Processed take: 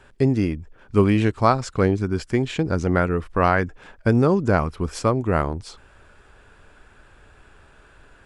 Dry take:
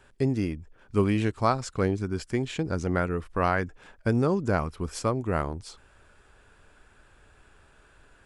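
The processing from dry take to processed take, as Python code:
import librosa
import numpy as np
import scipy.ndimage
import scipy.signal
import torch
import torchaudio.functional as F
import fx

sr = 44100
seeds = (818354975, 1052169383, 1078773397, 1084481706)

y = fx.high_shelf(x, sr, hz=6600.0, db=-7.5)
y = F.gain(torch.from_numpy(y), 6.5).numpy()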